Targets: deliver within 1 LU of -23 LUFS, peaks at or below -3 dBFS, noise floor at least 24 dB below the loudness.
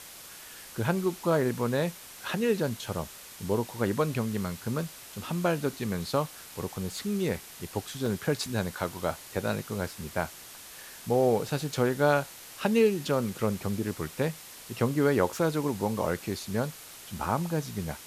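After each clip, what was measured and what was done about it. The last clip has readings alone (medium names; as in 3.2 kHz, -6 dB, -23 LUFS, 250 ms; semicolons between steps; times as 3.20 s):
dropouts 2; longest dropout 2.1 ms; noise floor -47 dBFS; noise floor target -54 dBFS; loudness -30.0 LUFS; peak level -11.0 dBFS; loudness target -23.0 LUFS
-> interpolate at 8.06/16.06 s, 2.1 ms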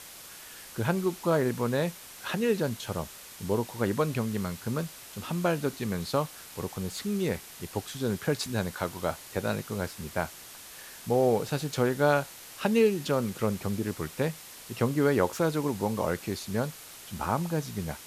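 dropouts 0; noise floor -47 dBFS; noise floor target -54 dBFS
-> noise reduction 7 dB, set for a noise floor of -47 dBFS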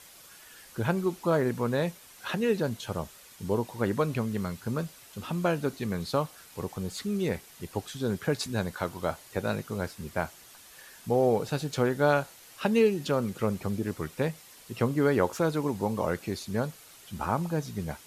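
noise floor -52 dBFS; noise floor target -54 dBFS
-> noise reduction 6 dB, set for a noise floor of -52 dBFS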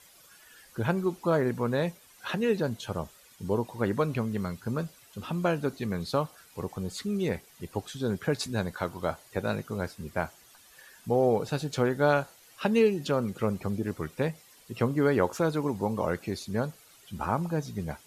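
noise floor -57 dBFS; loudness -30.0 LUFS; peak level -11.0 dBFS; loudness target -23.0 LUFS
-> trim +7 dB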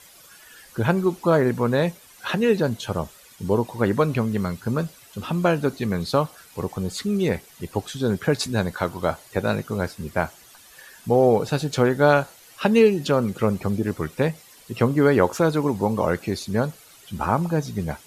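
loudness -23.0 LUFS; peak level -4.0 dBFS; noise floor -50 dBFS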